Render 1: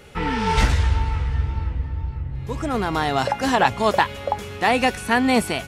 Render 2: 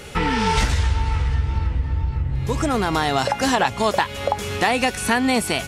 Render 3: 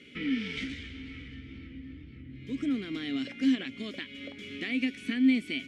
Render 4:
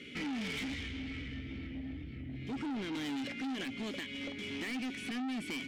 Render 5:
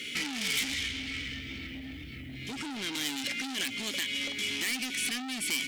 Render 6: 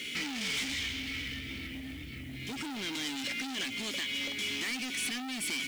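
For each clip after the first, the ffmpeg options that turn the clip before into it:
-af "equalizer=f=7.6k:w=0.48:g=5.5,acompressor=threshold=-26dB:ratio=3,volume=7.5dB"
-filter_complex "[0:a]asplit=3[a][b][c];[a]bandpass=f=270:t=q:w=8,volume=0dB[d];[b]bandpass=f=2.29k:t=q:w=8,volume=-6dB[e];[c]bandpass=f=3.01k:t=q:w=8,volume=-9dB[f];[d][e][f]amix=inputs=3:normalize=0"
-af "alimiter=level_in=2dB:limit=-24dB:level=0:latency=1:release=39,volume=-2dB,asoftclip=type=tanh:threshold=-39dB,volume=4dB"
-af "acompressor=threshold=-39dB:ratio=6,crystalizer=i=10:c=0"
-af "acrusher=bits=4:mode=log:mix=0:aa=0.000001,asoftclip=type=tanh:threshold=-27dB"

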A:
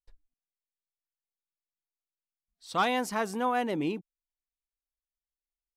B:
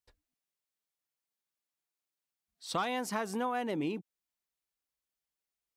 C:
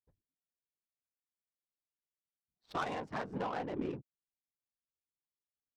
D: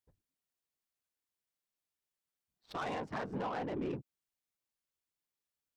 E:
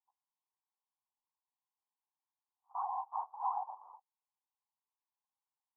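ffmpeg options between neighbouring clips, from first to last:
-af "highpass=80,acompressor=threshold=-35dB:ratio=5,volume=4dB"
-af "afftfilt=real='hypot(re,im)*cos(2*PI*random(0))':imag='hypot(re,im)*sin(2*PI*random(1))':win_size=512:overlap=0.75,highshelf=f=2k:g=8.5,adynamicsmooth=sensitivity=5.5:basefreq=550,volume=1.5dB"
-af "alimiter=level_in=9.5dB:limit=-24dB:level=0:latency=1:release=10,volume=-9.5dB,volume=3dB"
-af "asuperpass=centerf=920:order=8:qfactor=2.7,volume=7dB"

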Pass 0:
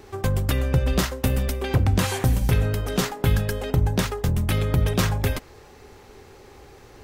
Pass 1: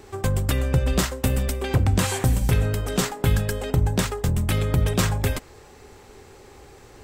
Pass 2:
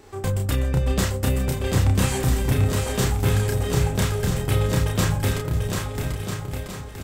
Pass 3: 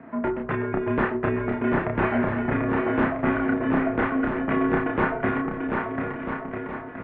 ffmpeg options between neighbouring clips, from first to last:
-af "equalizer=f=7.9k:t=o:w=0.31:g=7.5"
-filter_complex "[0:a]asplit=2[a][b];[b]adelay=31,volume=-3dB[c];[a][c]amix=inputs=2:normalize=0,asplit=2[d][e];[e]aecho=0:1:740|1295|1711|2023|2258:0.631|0.398|0.251|0.158|0.1[f];[d][f]amix=inputs=2:normalize=0,volume=-3.5dB"
-af "highpass=f=310:t=q:w=0.5412,highpass=f=310:t=q:w=1.307,lowpass=f=2.2k:t=q:w=0.5176,lowpass=f=2.2k:t=q:w=0.7071,lowpass=f=2.2k:t=q:w=1.932,afreqshift=-150,volume=6.5dB"

